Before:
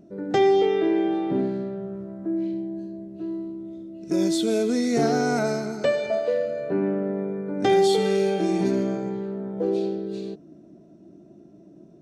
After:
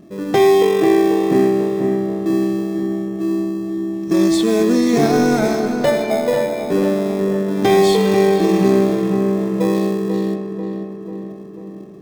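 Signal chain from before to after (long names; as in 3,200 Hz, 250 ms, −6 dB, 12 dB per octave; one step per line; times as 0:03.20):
in parallel at −8.5 dB: decimation without filtering 30×
on the sum: feedback echo with a low-pass in the loop 491 ms, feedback 59%, low-pass 2,400 Hz, level −7 dB
level +4.5 dB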